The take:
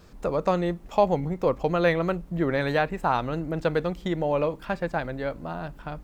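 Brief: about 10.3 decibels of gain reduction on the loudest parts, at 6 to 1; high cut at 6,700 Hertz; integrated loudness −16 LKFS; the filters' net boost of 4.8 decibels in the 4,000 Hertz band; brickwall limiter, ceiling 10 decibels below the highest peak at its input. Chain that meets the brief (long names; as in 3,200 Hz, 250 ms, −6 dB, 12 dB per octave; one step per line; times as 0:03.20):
low-pass filter 6,700 Hz
parametric band 4,000 Hz +6 dB
downward compressor 6 to 1, threshold −28 dBFS
level +19 dB
brickwall limiter −5 dBFS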